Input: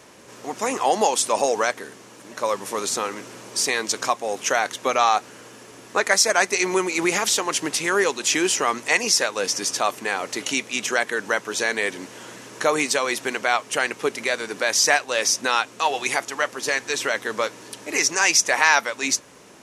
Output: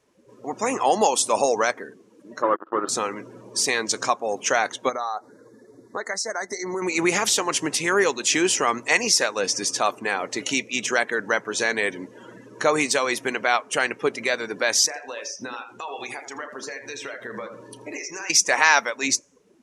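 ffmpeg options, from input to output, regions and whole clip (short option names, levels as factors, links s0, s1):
-filter_complex "[0:a]asettb=1/sr,asplit=3[s0][s1][s2];[s0]atrim=end=2.424[s3];[s1]atrim=start=2.42:end=2.89,asetpts=PTS-STARTPTS,afade=t=in:d=0.004:c=qsin,afade=t=out:st=0.466:d=0.004:c=qsin,aeval=exprs='val(0)+0.0126*(sin(2*PI*60*n/s)+sin(2*PI*2*60*n/s)/2+sin(2*PI*3*60*n/s)/3+sin(2*PI*4*60*n/s)/4+sin(2*PI*5*60*n/s)/5)':c=same,acrusher=bits=3:mix=0:aa=0.5,highpass=250,equalizer=f=340:t=q:w=4:g=9,equalizer=f=1300:t=q:w=4:g=8,equalizer=f=2300:t=q:w=4:g=-10,lowpass=f=2700:w=0.5412,lowpass=f=2700:w=1.3066[s4];[s2]atrim=start=2.886[s5];[s3][s4]acrossfade=d=0.004:c1=hsin:c2=qsin[s6];[s6][s5]acrossfade=d=0.004:c1=qsin:c2=hsin,asettb=1/sr,asplit=3[s7][s8][s9];[s7]atrim=end=4.894[s10];[s8]atrim=start=4.89:end=6.82,asetpts=PTS-STARTPTS,afade=t=in:d=0.004:c=qsin,afade=t=out:st=1.926:d=0.004:c=qsin,acompressor=threshold=0.0398:ratio=2.5:attack=3.2:release=140:knee=1:detection=peak,asuperstop=centerf=2800:order=12:qfactor=2[s11];[s9]atrim=start=6.816[s12];[s10][s11]acrossfade=d=0.004:c1=hsin:c2=qsin[s13];[s13][s12]acrossfade=d=0.004:c1=qsin:c2=hsin,asettb=1/sr,asplit=3[s14][s15][s16];[s14]atrim=end=14.864[s17];[s15]atrim=start=14.86:end=18.3,asetpts=PTS-STARTPTS,afade=t=in:d=0.004:c=qsin,afade=t=out:st=3.436:d=0.004:c=qsin,acompressor=threshold=0.0316:ratio=6:attack=3.2:release=140:knee=1:detection=peak,asplit=2[s18][s19];[s19]adelay=33,volume=0.316[s20];[s18][s20]amix=inputs=2:normalize=0,atrim=end_sample=151704,asplit=2[s21][s22];[s22]adelay=82,lowpass=f=4800:p=1,volume=0.447,asplit=2[s23][s24];[s24]adelay=82,lowpass=f=4800:p=1,volume=0.41,asplit=2[s25][s26];[s26]adelay=82,lowpass=f=4800:p=1,volume=0.41,asplit=2[s27][s28];[s28]adelay=82,lowpass=f=4800:p=1,volume=0.41,asplit=2[s29][s30];[s30]adelay=82,lowpass=f=4800:p=1,volume=0.41[s31];[s21][s23][s25][s27][s29][s31]amix=inputs=6:normalize=0,atrim=end_sample=151704[s32];[s16]atrim=start=18.296[s33];[s17][s32]acrossfade=d=0.004:c1=hsin:c2=qsin[s34];[s34][s33]acrossfade=d=0.004:c1=qsin:c2=hsin,afftdn=nr=21:nf=-37,lowshelf=f=98:g=10.5"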